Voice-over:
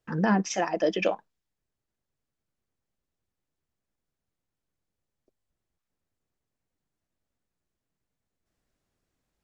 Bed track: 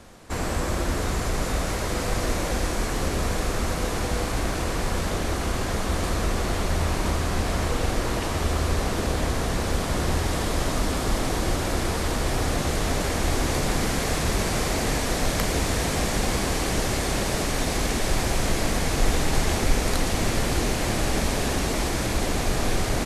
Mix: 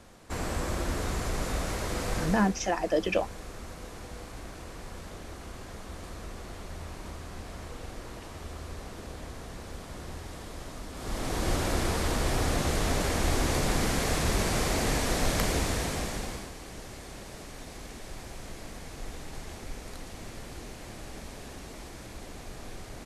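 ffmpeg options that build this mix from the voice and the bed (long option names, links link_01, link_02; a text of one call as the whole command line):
ffmpeg -i stem1.wav -i stem2.wav -filter_complex "[0:a]adelay=2100,volume=-1.5dB[link_01];[1:a]volume=8dB,afade=type=out:start_time=2.16:duration=0.38:silence=0.281838,afade=type=in:start_time=10.93:duration=0.62:silence=0.211349,afade=type=out:start_time=15.46:duration=1.06:silence=0.16788[link_02];[link_01][link_02]amix=inputs=2:normalize=0" out.wav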